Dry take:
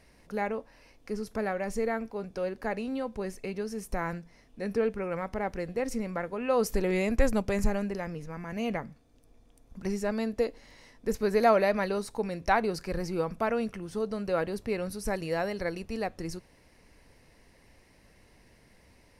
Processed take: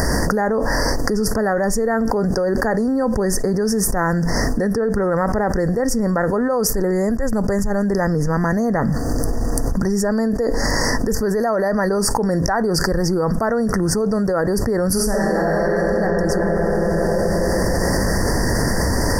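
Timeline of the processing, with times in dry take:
14.92–15.9 reverb throw, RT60 2.9 s, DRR -8.5 dB
whole clip: upward compressor, threshold -35 dBFS; Chebyshev band-stop 1900–4600 Hz, order 5; fast leveller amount 100%; gain -1 dB

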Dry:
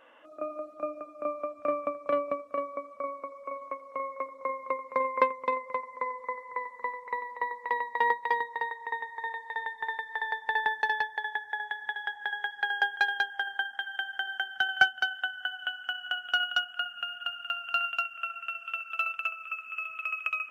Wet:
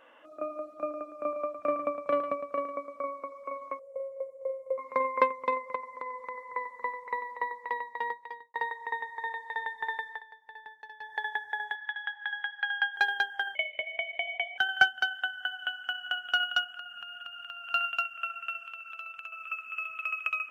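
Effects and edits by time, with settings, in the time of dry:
0.68–3.06 echo 0.11 s -9.5 dB
3.79–4.78 EQ curve 130 Hz 0 dB, 190 Hz -17 dB, 310 Hz -27 dB, 500 Hz +6 dB, 1200 Hz -29 dB, 2600 Hz -23 dB, 4800 Hz -20 dB, 7100 Hz -4 dB
5.75–6.49 compressor, threshold -33 dBFS
7.33–8.54 fade out
10.07–11.16 dip -19.5 dB, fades 0.16 s
11.75–12.96 Chebyshev band-pass 1100–3400 Hz
13.55–14.58 inverted band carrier 3800 Hz
16.66–17.7 compressor 5:1, threshold -39 dBFS
18.67–19.33 compressor 4:1, threshold -40 dBFS

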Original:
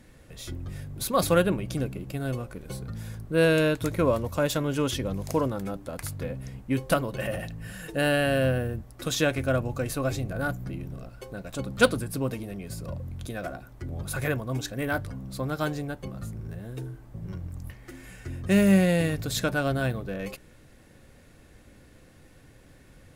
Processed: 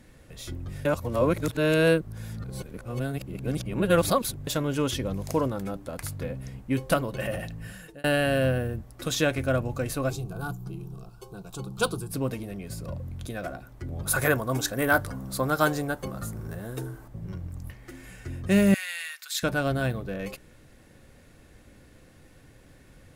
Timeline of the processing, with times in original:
0.85–4.47 reverse
7.64–8.04 fade out
10.1–12.11 fixed phaser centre 380 Hz, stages 8
14.06–17.08 EQ curve 120 Hz 0 dB, 1400 Hz +9 dB, 2400 Hz +2 dB, 12000 Hz +11 dB
18.74–19.43 HPF 1400 Hz 24 dB/oct

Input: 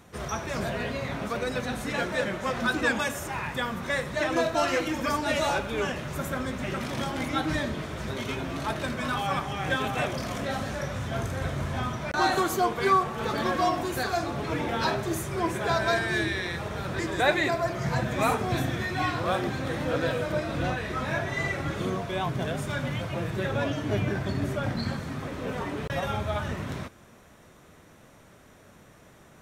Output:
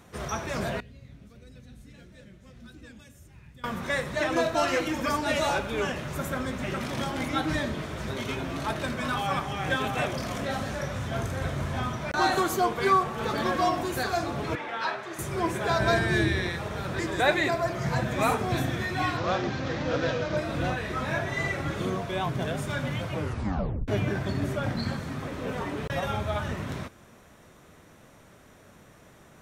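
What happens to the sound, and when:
0.8–3.64 passive tone stack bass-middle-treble 10-0-1
14.55–15.19 band-pass 1600 Hz, Q 0.76
15.8–16.5 low shelf 300 Hz +8.5 dB
19.17–20.37 CVSD 32 kbps
23.13 tape stop 0.75 s

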